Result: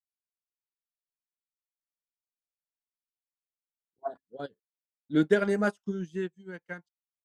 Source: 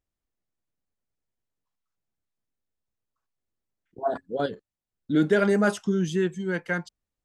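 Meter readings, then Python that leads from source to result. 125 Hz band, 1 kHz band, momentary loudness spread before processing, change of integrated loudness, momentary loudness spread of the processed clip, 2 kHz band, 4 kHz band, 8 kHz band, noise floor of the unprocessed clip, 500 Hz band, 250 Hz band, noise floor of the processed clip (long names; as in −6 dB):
−7.5 dB, −6.5 dB, 10 LU, −3.5 dB, 19 LU, −6.0 dB, −7.0 dB, below −10 dB, below −85 dBFS, −5.0 dB, −5.0 dB, below −85 dBFS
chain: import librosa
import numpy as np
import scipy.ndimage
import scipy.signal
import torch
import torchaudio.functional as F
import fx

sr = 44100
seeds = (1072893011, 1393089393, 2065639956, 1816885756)

y = fx.upward_expand(x, sr, threshold_db=-41.0, expansion=2.5)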